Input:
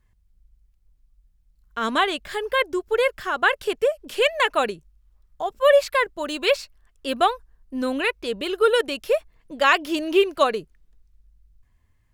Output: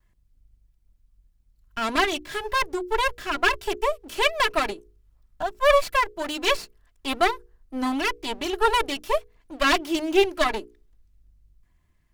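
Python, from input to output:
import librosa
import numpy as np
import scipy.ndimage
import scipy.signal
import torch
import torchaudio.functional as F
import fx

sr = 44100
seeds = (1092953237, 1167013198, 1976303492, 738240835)

y = fx.lower_of_two(x, sr, delay_ms=3.0)
y = fx.hum_notches(y, sr, base_hz=60, count=8)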